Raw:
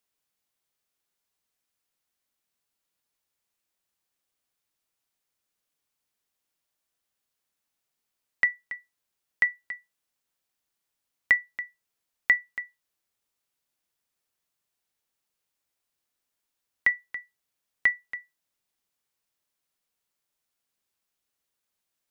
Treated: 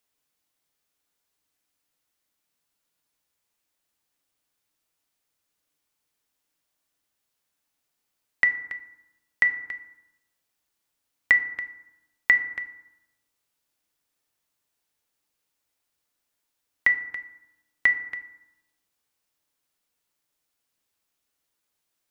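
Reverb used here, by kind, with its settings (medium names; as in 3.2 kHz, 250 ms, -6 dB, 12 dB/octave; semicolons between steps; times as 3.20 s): FDN reverb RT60 0.95 s, low-frequency decay 1.2×, high-frequency decay 0.45×, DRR 8 dB; trim +3 dB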